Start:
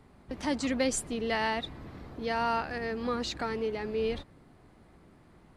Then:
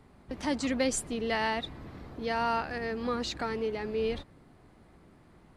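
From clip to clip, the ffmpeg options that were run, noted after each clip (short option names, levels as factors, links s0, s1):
-af anull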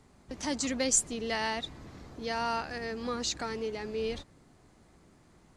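-af "equalizer=f=6700:w=1.2:g=13.5,volume=0.708"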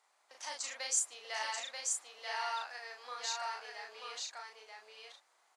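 -filter_complex "[0:a]highpass=f=700:w=0.5412,highpass=f=700:w=1.3066,asplit=2[s0][s1];[s1]adelay=37,volume=0.708[s2];[s0][s2]amix=inputs=2:normalize=0,aecho=1:1:936:0.668,volume=0.447"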